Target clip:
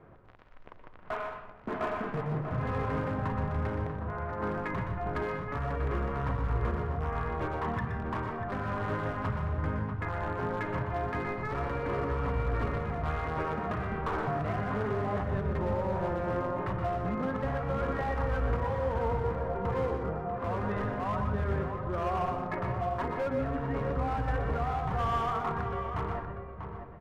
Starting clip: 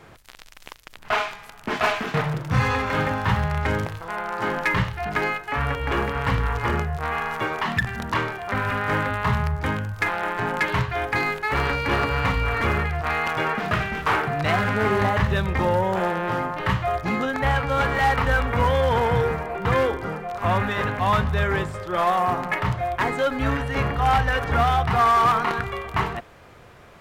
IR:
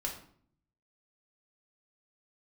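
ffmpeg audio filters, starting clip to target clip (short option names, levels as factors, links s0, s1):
-filter_complex "[0:a]lowpass=1100,bandreject=f=840:w=12,alimiter=limit=0.126:level=0:latency=1:release=136,volume=13.3,asoftclip=hard,volume=0.075,asplit=2[s0][s1];[s1]adelay=641.4,volume=0.447,highshelf=f=4000:g=-14.4[s2];[s0][s2]amix=inputs=2:normalize=0,asplit=2[s3][s4];[1:a]atrim=start_sample=2205,adelay=120[s5];[s4][s5]afir=irnorm=-1:irlink=0,volume=0.447[s6];[s3][s6]amix=inputs=2:normalize=0,volume=0.531"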